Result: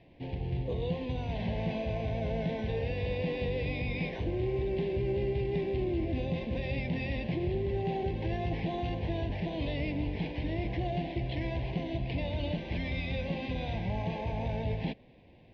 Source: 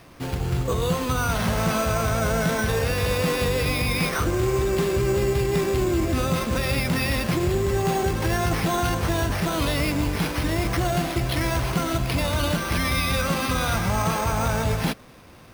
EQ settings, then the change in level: Butterworth band-stop 1.3 kHz, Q 1.1; low-pass 3.6 kHz 24 dB/octave; distance through air 110 m; -8.5 dB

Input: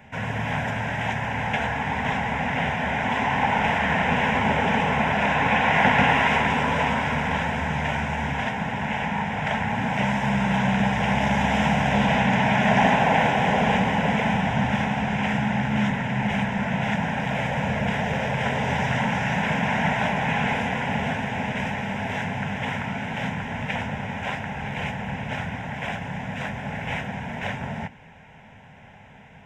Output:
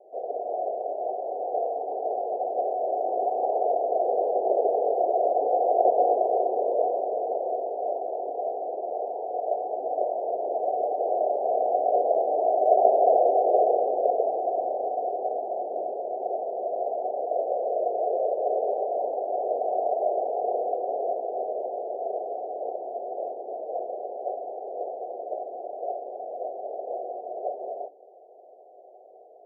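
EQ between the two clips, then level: Chebyshev band-pass 320–740 Hz, order 5; +6.5 dB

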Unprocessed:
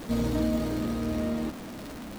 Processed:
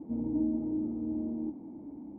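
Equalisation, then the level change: cascade formant filter u; high-pass 54 Hz; +1.5 dB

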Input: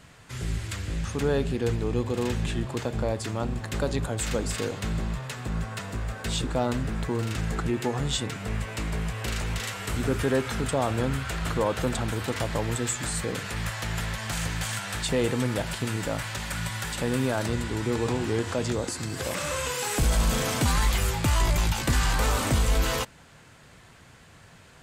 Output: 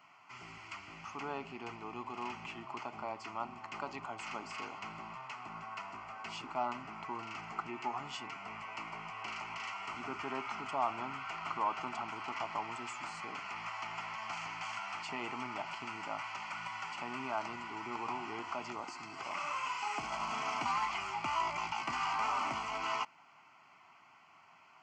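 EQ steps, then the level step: high-pass 680 Hz 12 dB/octave; tape spacing loss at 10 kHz 32 dB; static phaser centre 2.5 kHz, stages 8; +3.5 dB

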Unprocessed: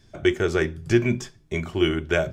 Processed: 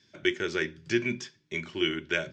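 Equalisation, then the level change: cabinet simulation 160–6000 Hz, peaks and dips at 450 Hz -5 dB, 710 Hz -6 dB, 1.2 kHz -9 dB; bass shelf 450 Hz -9 dB; peaking EQ 730 Hz -10 dB 0.53 oct; 0.0 dB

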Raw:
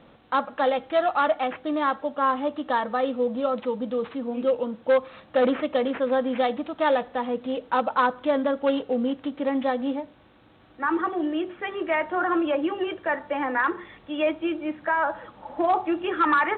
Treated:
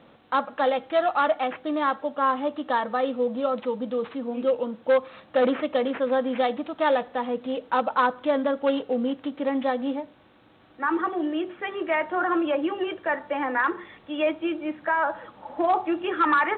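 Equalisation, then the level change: bass shelf 70 Hz -11.5 dB; 0.0 dB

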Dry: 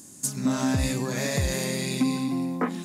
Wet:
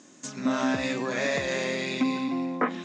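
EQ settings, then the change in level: distance through air 120 m; cabinet simulation 360–6600 Hz, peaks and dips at 420 Hz -4 dB, 850 Hz -5 dB, 4.6 kHz -7 dB; +5.5 dB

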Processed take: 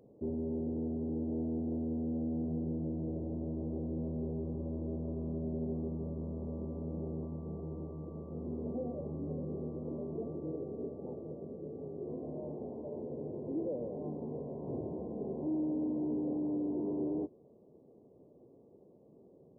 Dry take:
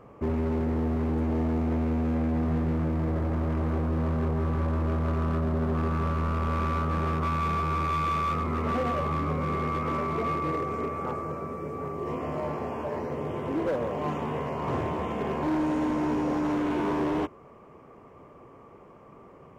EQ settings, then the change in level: Gaussian low-pass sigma 18 samples; bass shelf 66 Hz -11.5 dB; bass shelf 180 Hz -12 dB; 0.0 dB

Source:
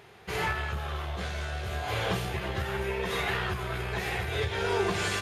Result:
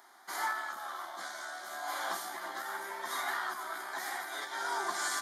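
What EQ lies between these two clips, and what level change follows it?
elliptic high-pass 270 Hz, stop band 70 dB; tilt EQ +1.5 dB/octave; static phaser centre 1.1 kHz, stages 4; 0.0 dB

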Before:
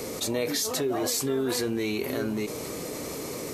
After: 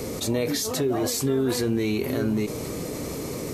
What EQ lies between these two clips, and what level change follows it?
bass shelf 240 Hz +11 dB; 0.0 dB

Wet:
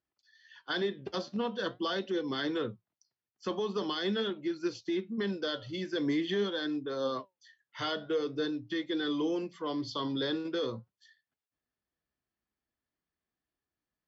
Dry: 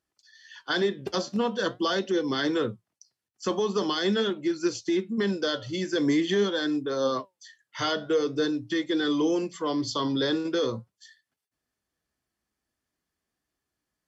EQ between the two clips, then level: low-pass 5.7 kHz 12 dB/octave; dynamic bell 3.7 kHz, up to +4 dB, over -45 dBFS, Q 1.1; distance through air 88 m; -6.5 dB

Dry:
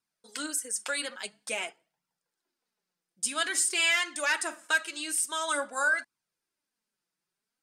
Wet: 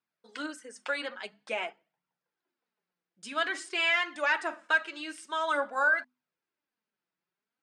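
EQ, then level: hum notches 50/100/150/200/250 Hz; dynamic bell 810 Hz, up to +4 dB, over -43 dBFS, Q 1.1; band-pass 110–2900 Hz; 0.0 dB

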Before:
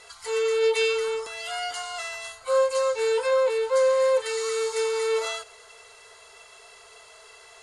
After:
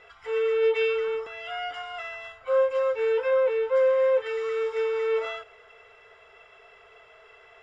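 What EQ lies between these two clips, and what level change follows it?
Savitzky-Golay filter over 25 samples; distance through air 77 m; peaking EQ 970 Hz -7.5 dB 0.28 oct; 0.0 dB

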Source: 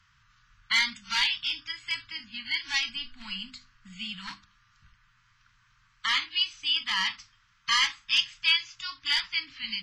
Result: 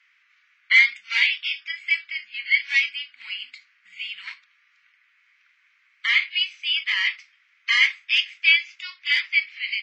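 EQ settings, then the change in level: resonant high-pass 2.2 kHz, resonance Q 5.9; tilt EQ -3.5 dB/octave; +2.0 dB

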